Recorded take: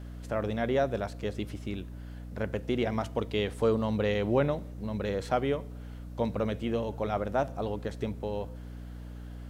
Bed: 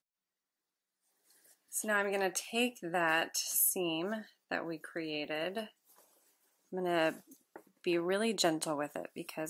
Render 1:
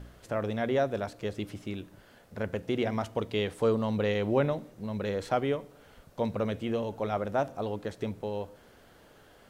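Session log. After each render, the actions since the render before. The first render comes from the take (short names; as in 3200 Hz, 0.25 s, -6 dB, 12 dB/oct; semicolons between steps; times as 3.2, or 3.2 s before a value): de-hum 60 Hz, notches 5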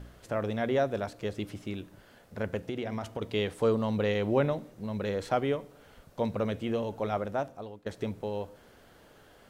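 2.66–3.22 compressor, threshold -30 dBFS; 7.14–7.86 fade out, to -19 dB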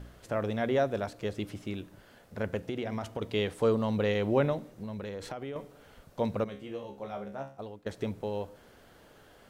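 4.66–5.56 compressor 12:1, threshold -34 dBFS; 6.44–7.59 resonator 68 Hz, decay 0.36 s, mix 90%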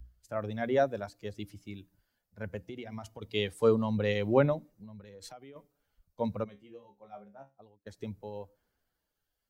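per-bin expansion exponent 1.5; three-band expander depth 40%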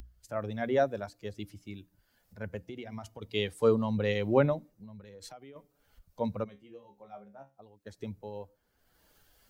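upward compressor, threshold -47 dBFS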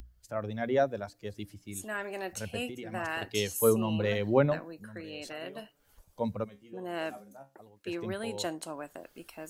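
add bed -4.5 dB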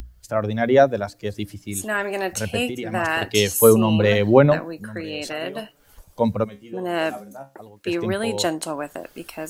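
gain +12 dB; limiter -2 dBFS, peak gain reduction 2.5 dB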